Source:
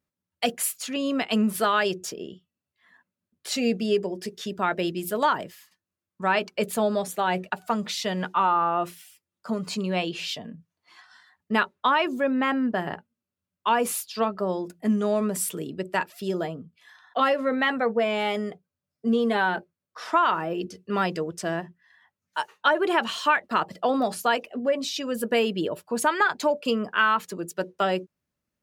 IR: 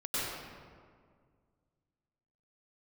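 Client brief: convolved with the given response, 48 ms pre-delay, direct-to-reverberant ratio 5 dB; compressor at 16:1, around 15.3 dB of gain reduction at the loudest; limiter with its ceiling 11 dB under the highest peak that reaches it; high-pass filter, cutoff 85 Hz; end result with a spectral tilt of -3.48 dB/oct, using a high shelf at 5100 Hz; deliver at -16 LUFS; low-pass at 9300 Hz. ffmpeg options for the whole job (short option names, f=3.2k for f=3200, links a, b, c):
-filter_complex "[0:a]highpass=85,lowpass=9.3k,highshelf=f=5.1k:g=7.5,acompressor=threshold=-31dB:ratio=16,alimiter=level_in=1.5dB:limit=-24dB:level=0:latency=1,volume=-1.5dB,asplit=2[a][b];[1:a]atrim=start_sample=2205,adelay=48[c];[b][c]afir=irnorm=-1:irlink=0,volume=-12dB[d];[a][d]amix=inputs=2:normalize=0,volume=20dB"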